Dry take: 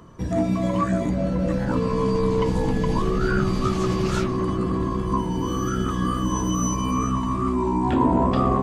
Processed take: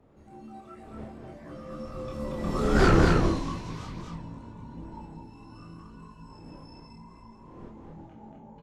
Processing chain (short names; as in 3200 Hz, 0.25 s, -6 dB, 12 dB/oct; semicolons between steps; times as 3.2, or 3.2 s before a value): wind noise 380 Hz -27 dBFS; Doppler pass-by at 2.83, 48 m/s, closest 3.4 m; in parallel at -7 dB: sine folder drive 8 dB, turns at -12 dBFS; on the sum: dynamic EQ 7200 Hz, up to +5 dB, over -47 dBFS, Q 0.78; on a send: echo 0.233 s -3 dB; on the sum: chorus voices 2, 0.5 Hz, delay 27 ms, depth 4.1 ms